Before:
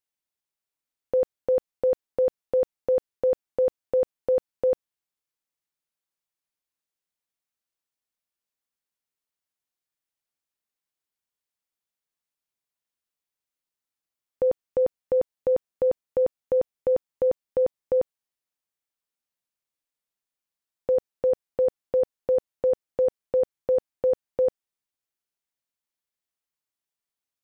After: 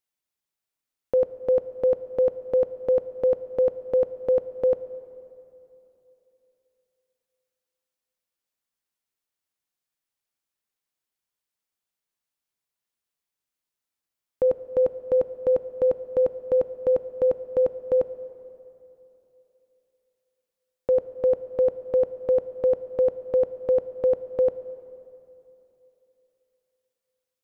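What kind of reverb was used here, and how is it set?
plate-style reverb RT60 3.2 s, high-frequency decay 0.75×, DRR 13.5 dB; trim +1.5 dB

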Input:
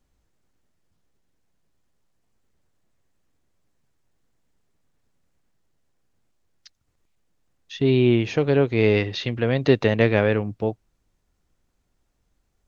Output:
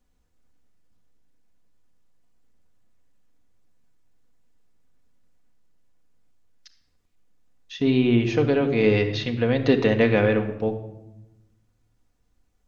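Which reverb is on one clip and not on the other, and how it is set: simulated room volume 3900 m³, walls furnished, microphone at 1.9 m; trim -2 dB

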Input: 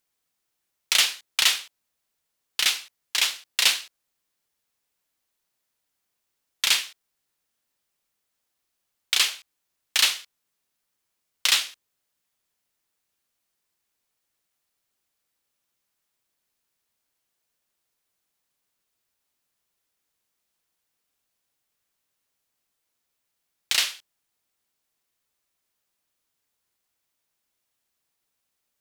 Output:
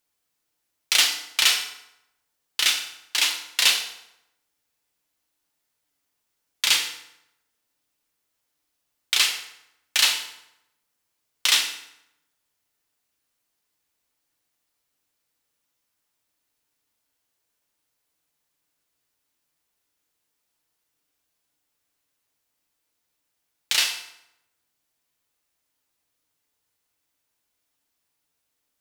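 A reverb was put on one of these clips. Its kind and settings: FDN reverb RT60 0.85 s, low-frequency decay 1.05×, high-frequency decay 0.75×, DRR 3 dB

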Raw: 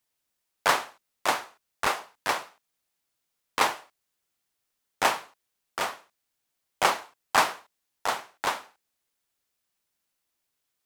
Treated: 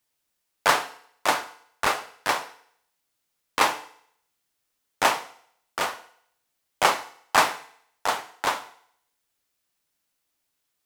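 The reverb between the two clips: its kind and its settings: FDN reverb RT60 0.67 s, low-frequency decay 0.8×, high-frequency decay 1×, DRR 12 dB; trim +2.5 dB

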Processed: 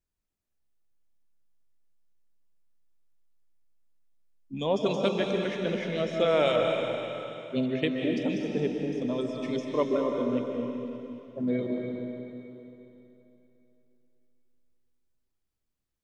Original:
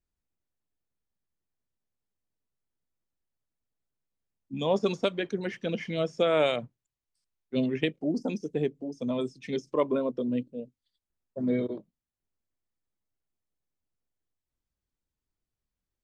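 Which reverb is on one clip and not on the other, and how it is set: algorithmic reverb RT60 3.1 s, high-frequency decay 1×, pre-delay 110 ms, DRR 1 dB; trim -1 dB

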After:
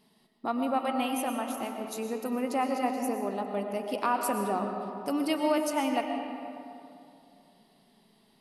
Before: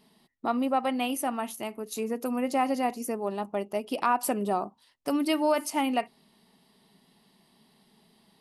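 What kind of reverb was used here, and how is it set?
algorithmic reverb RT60 2.7 s, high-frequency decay 0.5×, pre-delay 75 ms, DRR 3.5 dB; trim -3 dB

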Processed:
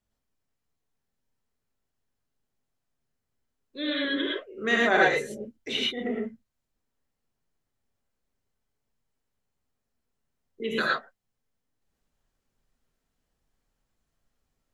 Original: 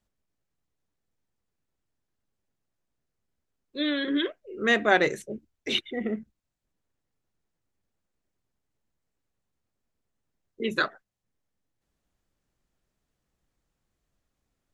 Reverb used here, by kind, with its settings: gated-style reverb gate 140 ms rising, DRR -4 dB; trim -4.5 dB

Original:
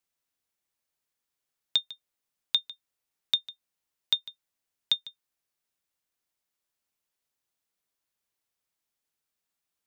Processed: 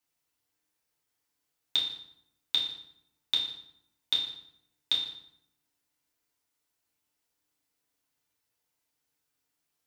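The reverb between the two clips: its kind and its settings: FDN reverb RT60 0.75 s, low-frequency decay 1.35×, high-frequency decay 0.75×, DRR -5 dB; trim -2 dB

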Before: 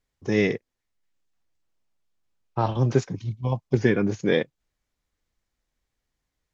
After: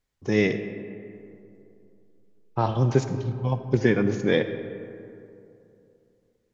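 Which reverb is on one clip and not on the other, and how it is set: algorithmic reverb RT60 2.8 s, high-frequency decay 0.4×, pre-delay 20 ms, DRR 9.5 dB

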